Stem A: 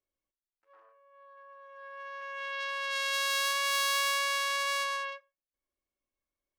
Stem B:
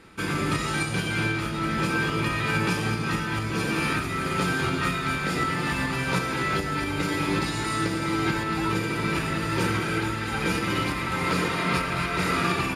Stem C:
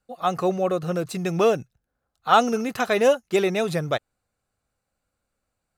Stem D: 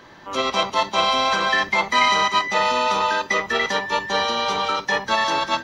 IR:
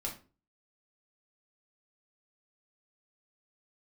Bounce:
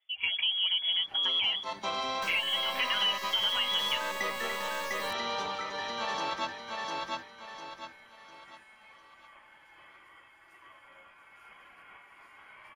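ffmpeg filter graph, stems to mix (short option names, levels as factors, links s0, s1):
-filter_complex "[0:a]acrusher=bits=3:dc=4:mix=0:aa=0.000001,asoftclip=type=tanh:threshold=0.0501,volume=1.26[s0];[1:a]aderivative,adelay=200,volume=0.211,asplit=2[s1][s2];[s2]volume=0.0708[s3];[2:a]aecho=1:1:5.9:0.79,volume=0.841[s4];[3:a]alimiter=limit=0.355:level=0:latency=1:release=387,tremolo=f=0.91:d=0.72,adelay=900,volume=0.355,asplit=2[s5][s6];[s6]volume=0.668[s7];[s1][s4]amix=inputs=2:normalize=0,lowpass=f=3000:t=q:w=0.5098,lowpass=f=3000:t=q:w=0.6013,lowpass=f=3000:t=q:w=0.9,lowpass=f=3000:t=q:w=2.563,afreqshift=-3500,alimiter=limit=0.2:level=0:latency=1:release=101,volume=1[s8];[s3][s7]amix=inputs=2:normalize=0,aecho=0:1:701|1402|2103|2804|3505:1|0.35|0.122|0.0429|0.015[s9];[s0][s5][s8][s9]amix=inputs=4:normalize=0,acompressor=threshold=0.0282:ratio=2"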